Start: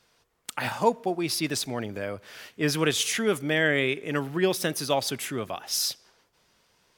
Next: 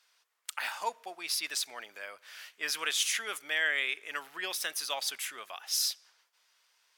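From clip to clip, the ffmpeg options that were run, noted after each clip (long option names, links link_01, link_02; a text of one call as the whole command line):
ffmpeg -i in.wav -af "highpass=1200,volume=-2.5dB" out.wav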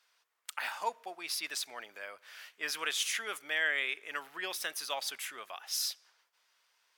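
ffmpeg -i in.wav -af "equalizer=frequency=7900:width_type=o:width=2.9:gain=-4.5" out.wav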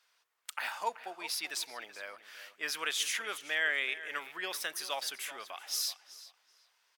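ffmpeg -i in.wav -filter_complex "[0:a]asplit=2[link_01][link_02];[link_02]adelay=380,lowpass=frequency=4700:poles=1,volume=-14dB,asplit=2[link_03][link_04];[link_04]adelay=380,lowpass=frequency=4700:poles=1,volume=0.23,asplit=2[link_05][link_06];[link_06]adelay=380,lowpass=frequency=4700:poles=1,volume=0.23[link_07];[link_01][link_03][link_05][link_07]amix=inputs=4:normalize=0" out.wav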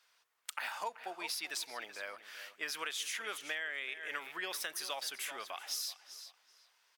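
ffmpeg -i in.wav -af "acompressor=threshold=-36dB:ratio=12,volume=1dB" out.wav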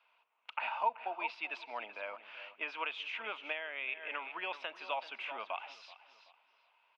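ffmpeg -i in.wav -af "highpass=frequency=210:width=0.5412,highpass=frequency=210:width=1.3066,equalizer=frequency=220:width_type=q:width=4:gain=4,equalizer=frequency=380:width_type=q:width=4:gain=-4,equalizer=frequency=640:width_type=q:width=4:gain=6,equalizer=frequency=930:width_type=q:width=4:gain=9,equalizer=frequency=1800:width_type=q:width=4:gain=-9,equalizer=frequency=2600:width_type=q:width=4:gain=9,lowpass=frequency=2900:width=0.5412,lowpass=frequency=2900:width=1.3066" out.wav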